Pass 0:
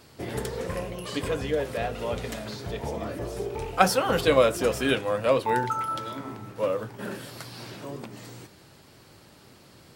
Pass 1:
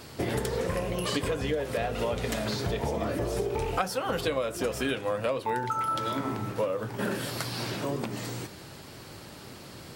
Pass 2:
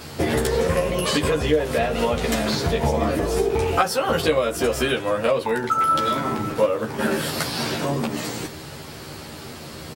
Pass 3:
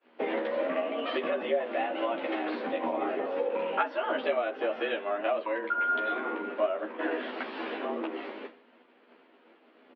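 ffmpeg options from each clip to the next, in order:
-af "acompressor=threshold=0.0224:ratio=12,volume=2.37"
-filter_complex "[0:a]asplit=2[s0][s1];[s1]adelay=13,volume=0.794[s2];[s0][s2]amix=inputs=2:normalize=0,volume=2.11"
-af "agate=range=0.0224:threshold=0.0447:ratio=3:detection=peak,highpass=f=150:t=q:w=0.5412,highpass=f=150:t=q:w=1.307,lowpass=f=3000:t=q:w=0.5176,lowpass=f=3000:t=q:w=0.7071,lowpass=f=3000:t=q:w=1.932,afreqshift=96,volume=0.376"

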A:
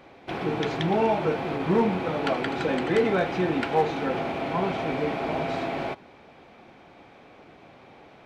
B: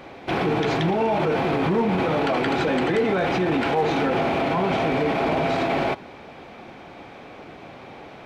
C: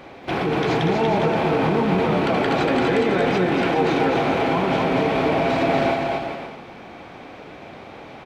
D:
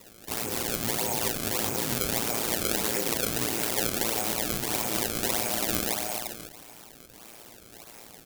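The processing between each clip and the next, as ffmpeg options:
-af "alimiter=limit=0.0668:level=0:latency=1:release=16,volume=2.82"
-af "aecho=1:1:240|408|525.6|607.9|665.5:0.631|0.398|0.251|0.158|0.1"
-af "acrusher=samples=27:mix=1:aa=0.000001:lfo=1:lforange=43.2:lforate=1.6,aeval=exprs='val(0)*sin(2*PI*57*n/s)':c=same,crystalizer=i=5:c=0,volume=0.282"

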